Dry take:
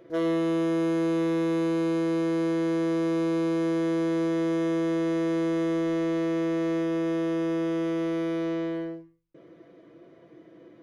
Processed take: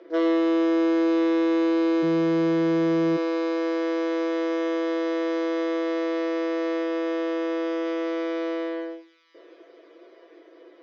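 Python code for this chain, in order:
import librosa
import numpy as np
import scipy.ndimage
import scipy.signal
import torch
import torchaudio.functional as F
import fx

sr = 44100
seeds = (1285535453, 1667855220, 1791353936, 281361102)

y = fx.ellip_bandpass(x, sr, low_hz=fx.steps((0.0, 310.0), (2.02, 120.0), (3.16, 380.0)), high_hz=5300.0, order=3, stop_db=40)
y = fx.echo_wet_highpass(y, sr, ms=831, feedback_pct=64, hz=2200.0, wet_db=-19.5)
y = y * librosa.db_to_amplitude(4.5)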